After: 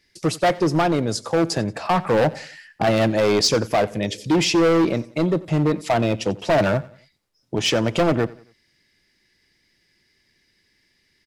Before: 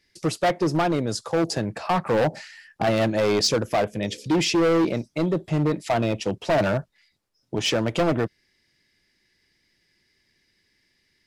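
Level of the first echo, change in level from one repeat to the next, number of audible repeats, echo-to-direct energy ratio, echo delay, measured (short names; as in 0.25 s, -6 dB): -20.5 dB, -8.0 dB, 2, -20.0 dB, 90 ms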